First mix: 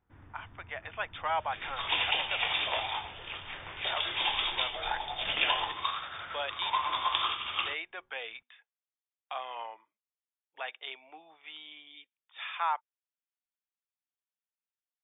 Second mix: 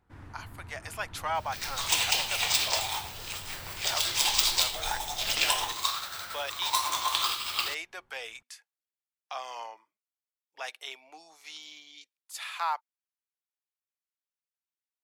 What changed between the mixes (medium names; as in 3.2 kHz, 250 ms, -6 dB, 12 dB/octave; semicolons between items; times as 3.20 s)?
first sound +7.0 dB; master: remove brick-wall FIR low-pass 3.7 kHz